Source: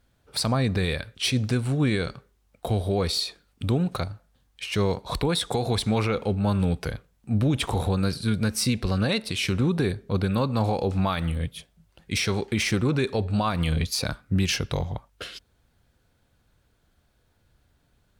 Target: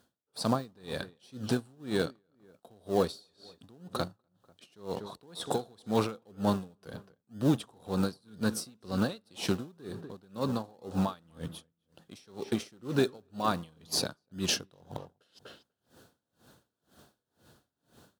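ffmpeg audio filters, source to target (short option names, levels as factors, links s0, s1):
-filter_complex "[0:a]asplit=2[s0][s1];[s1]acrusher=samples=38:mix=1:aa=0.000001:lfo=1:lforange=22.8:lforate=2,volume=0.282[s2];[s0][s2]amix=inputs=2:normalize=0,asplit=2[s3][s4];[s4]adelay=245,lowpass=f=2300:p=1,volume=0.15,asplit=2[s5][s6];[s6]adelay=245,lowpass=f=2300:p=1,volume=0.24[s7];[s3][s5][s7]amix=inputs=3:normalize=0,areverse,acompressor=mode=upward:threshold=0.0158:ratio=2.5,areverse,highpass=200,equalizer=f=2200:w=2.9:g=-12.5,aeval=exprs='val(0)*pow(10,-32*(0.5-0.5*cos(2*PI*2*n/s))/20)':c=same"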